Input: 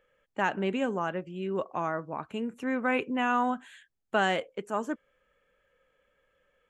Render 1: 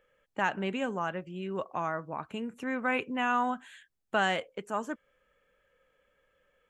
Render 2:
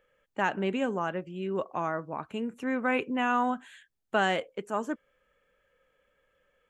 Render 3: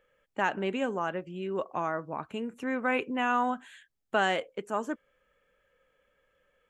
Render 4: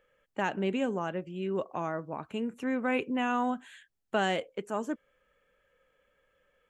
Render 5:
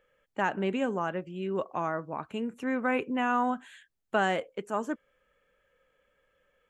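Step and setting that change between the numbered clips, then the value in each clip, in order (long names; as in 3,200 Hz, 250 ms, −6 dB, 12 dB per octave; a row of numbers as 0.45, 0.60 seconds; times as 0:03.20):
dynamic equaliser, frequency: 350, 9,700, 140, 1,300, 3,700 Hertz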